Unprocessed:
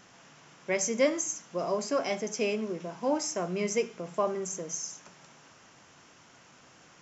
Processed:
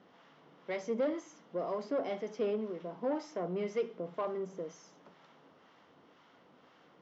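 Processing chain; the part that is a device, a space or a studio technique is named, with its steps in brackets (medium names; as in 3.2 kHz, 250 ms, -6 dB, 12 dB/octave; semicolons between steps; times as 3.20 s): guitar amplifier with harmonic tremolo (harmonic tremolo 2 Hz, depth 50%, crossover 790 Hz; saturation -27.5 dBFS, distortion -11 dB; cabinet simulation 110–3600 Hz, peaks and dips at 120 Hz -10 dB, 280 Hz +3 dB, 470 Hz +5 dB, 1.6 kHz -5 dB, 2.5 kHz -9 dB); trim -1.5 dB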